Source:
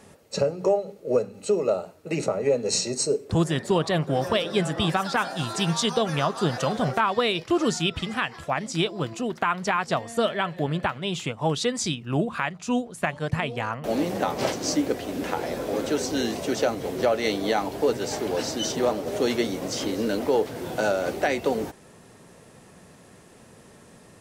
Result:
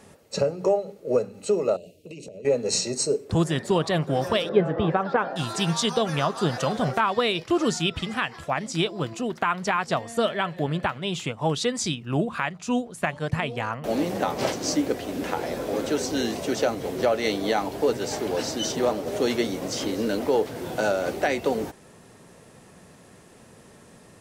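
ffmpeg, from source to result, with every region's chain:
-filter_complex "[0:a]asettb=1/sr,asplit=3[s0][s1][s2];[s0]atrim=end=1.764[s3];[s1]atrim=start=1.76:end=2.45,asetpts=PTS-STARTPTS,afade=t=in:d=0.004:c=qsin,afade=t=out:st=0.686:d=0.004:c=qsin,asuperstop=centerf=1200:order=8:qfactor=0.64,equalizer=f=2900:w=3.8:g=6,acompressor=threshold=0.0141:ratio=8:attack=3.2:release=140:knee=1:detection=peak[s4];[s2]atrim=start=2.446[s5];[s3][s4]acrossfade=d=0.004:c1=hsin:c2=qsin[s6];[s6][s5]acrossfade=d=0.004:c1=qsin:c2=hsin,asettb=1/sr,asplit=3[s7][s8][s9];[s7]atrim=end=4.494[s10];[s8]atrim=start=4.49:end=5.36,asetpts=PTS-STARTPTS,afade=t=in:d=0.004:c=qsin,afade=t=out:st=0.866:d=0.004:c=qsin,lowpass=1700,equalizer=f=470:t=o:w=0.61:g=8.5[s11];[s9]atrim=start=5.356[s12];[s10][s11]acrossfade=d=0.004:c1=hsin:c2=qsin[s13];[s13][s12]acrossfade=d=0.004:c1=qsin:c2=hsin"

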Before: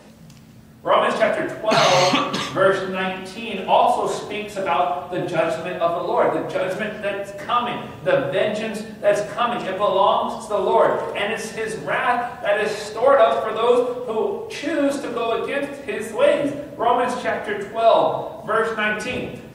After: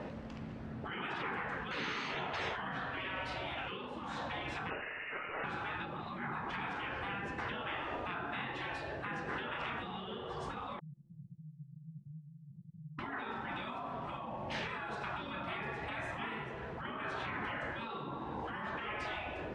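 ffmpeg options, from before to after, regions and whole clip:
-filter_complex "[0:a]asettb=1/sr,asplit=3[s0][s1][s2];[s0]atrim=end=4.704[s3];[s1]atrim=start=4.7:end=5.44,asetpts=PTS-STARTPTS,afade=t=in:d=0.004:c=qsin,afade=t=out:st=0.736:d=0.004:c=qsin,highpass=150,acrusher=bits=3:mode=log:mix=0:aa=0.000001,lowpass=f=2600:t=q:w=0.5098,lowpass=f=2600:t=q:w=0.6013,lowpass=f=2600:t=q:w=0.9,lowpass=f=2600:t=q:w=2.563,afreqshift=-3000[s4];[s2]atrim=start=5.436[s5];[s3][s4]acrossfade=d=0.004:c1=hsin:c2=qsin[s6];[s6][s5]acrossfade=d=0.004:c1=qsin:c2=hsin,asettb=1/sr,asplit=3[s7][s8][s9];[s7]atrim=end=10.794[s10];[s8]atrim=start=10.79:end=12.99,asetpts=PTS-STARTPTS,afade=t=in:d=0.004:c=qsin,afade=t=out:st=2.196:d=0.004:c=qsin,aeval=exprs='abs(val(0))':c=same,asuperpass=centerf=150:order=12:qfactor=5.1[s11];[s9]atrim=start=12.986[s12];[s10][s11]acrossfade=d=0.004:c1=hsin:c2=qsin[s13];[s13][s12]acrossfade=d=0.004:c1=qsin:c2=hsin,acompressor=threshold=0.0447:ratio=8,afftfilt=real='re*lt(hypot(re,im),0.0501)':imag='im*lt(hypot(re,im),0.0501)':win_size=1024:overlap=0.75,lowpass=2100,volume=1.5"

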